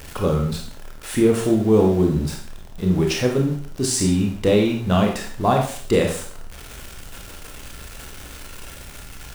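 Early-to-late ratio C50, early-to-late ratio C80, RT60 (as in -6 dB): 5.5 dB, 9.5 dB, 0.50 s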